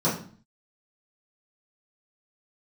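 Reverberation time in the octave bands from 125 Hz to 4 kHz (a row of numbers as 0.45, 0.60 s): 0.60, 0.60, 0.45, 0.45, 0.40, 0.40 s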